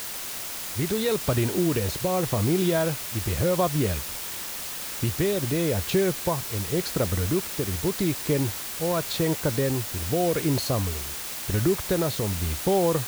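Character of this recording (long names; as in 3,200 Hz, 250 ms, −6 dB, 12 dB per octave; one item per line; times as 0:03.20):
tremolo triangle 0.88 Hz, depth 40%
a quantiser's noise floor 6 bits, dither triangular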